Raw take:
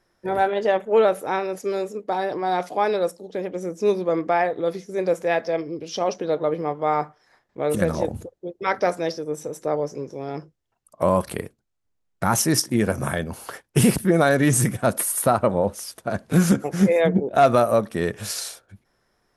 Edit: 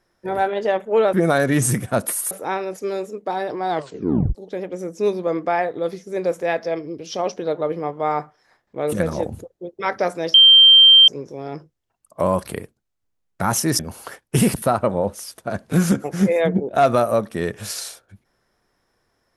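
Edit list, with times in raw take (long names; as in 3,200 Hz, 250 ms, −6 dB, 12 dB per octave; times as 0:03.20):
0:02.52: tape stop 0.65 s
0:09.16–0:09.90: beep over 3,150 Hz −6 dBFS
0:12.61–0:13.21: remove
0:14.04–0:15.22: move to 0:01.13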